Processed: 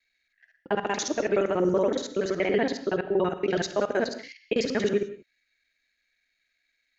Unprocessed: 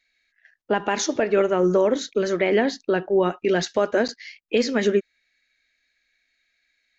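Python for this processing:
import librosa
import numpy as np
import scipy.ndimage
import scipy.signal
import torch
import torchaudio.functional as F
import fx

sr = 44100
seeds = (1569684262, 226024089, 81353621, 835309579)

y = fx.local_reverse(x, sr, ms=47.0)
y = fx.rev_gated(y, sr, seeds[0], gate_ms=210, shape='flat', drr_db=11.5)
y = y * 10.0 ** (-4.5 / 20.0)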